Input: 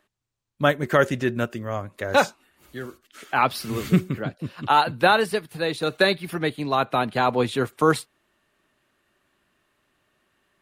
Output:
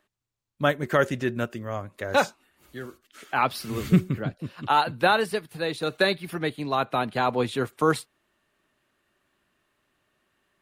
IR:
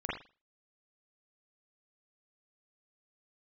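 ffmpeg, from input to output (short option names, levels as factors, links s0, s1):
-filter_complex "[0:a]asettb=1/sr,asplit=3[s0][s1][s2];[s0]atrim=end=3.774[s3];[s1]atrim=start=3.77:end=4.41,asetpts=PTS-STARTPTS,afade=t=in:d=0.004:c=qsin,afade=t=out:st=0.636:d=0.004:c=qsin,lowshelf=f=140:g=8[s4];[s2]atrim=start=4.406[s5];[s3][s4]acrossfade=d=0.004:c1=hsin:c2=qsin[s6];[s6][s5]acrossfade=d=0.004:c1=qsin:c2=hsin,volume=0.708"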